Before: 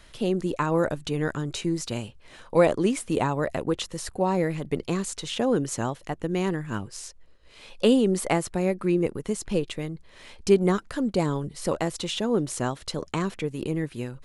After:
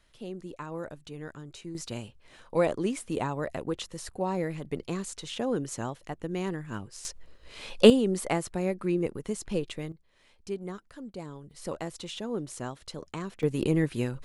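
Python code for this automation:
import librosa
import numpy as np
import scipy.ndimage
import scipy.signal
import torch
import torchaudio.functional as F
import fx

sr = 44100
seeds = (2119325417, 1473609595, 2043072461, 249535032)

y = fx.gain(x, sr, db=fx.steps((0.0, -14.0), (1.75, -6.0), (7.05, 5.0), (7.9, -4.5), (9.92, -16.0), (11.51, -9.0), (13.43, 3.0)))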